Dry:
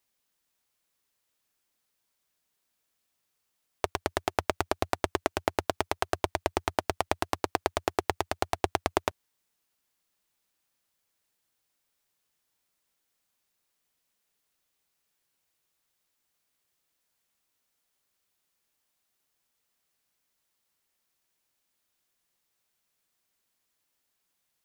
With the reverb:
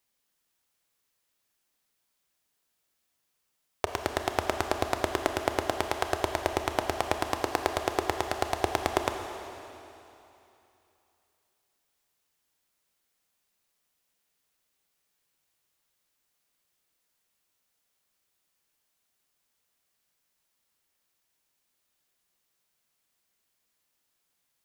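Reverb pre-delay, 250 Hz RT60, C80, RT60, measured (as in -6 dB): 26 ms, 2.8 s, 6.5 dB, 3.0 s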